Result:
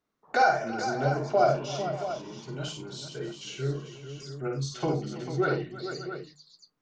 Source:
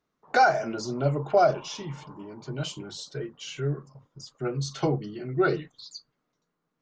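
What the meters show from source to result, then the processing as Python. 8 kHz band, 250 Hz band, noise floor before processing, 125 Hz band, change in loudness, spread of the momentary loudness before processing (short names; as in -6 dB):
-1.0 dB, -2.0 dB, -80 dBFS, -1.5 dB, -2.0 dB, 20 LU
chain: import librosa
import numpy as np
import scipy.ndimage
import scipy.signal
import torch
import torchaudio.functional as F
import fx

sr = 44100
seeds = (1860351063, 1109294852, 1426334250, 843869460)

p1 = fx.hum_notches(x, sr, base_hz=50, count=3)
p2 = p1 + fx.echo_multitap(p1, sr, ms=(52, 92, 328, 446, 583, 677), db=(-4.0, -13.5, -16.5, -9.5, -16.0, -10.5), dry=0)
y = p2 * librosa.db_to_amplitude(-3.5)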